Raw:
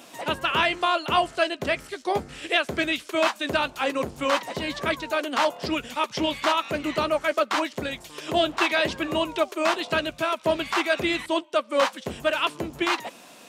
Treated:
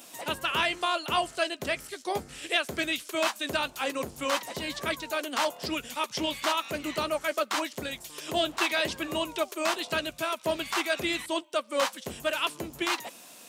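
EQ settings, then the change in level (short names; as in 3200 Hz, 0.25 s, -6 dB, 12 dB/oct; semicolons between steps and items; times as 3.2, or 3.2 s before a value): high shelf 5200 Hz +11.5 dB; high shelf 11000 Hz +3 dB; -6.0 dB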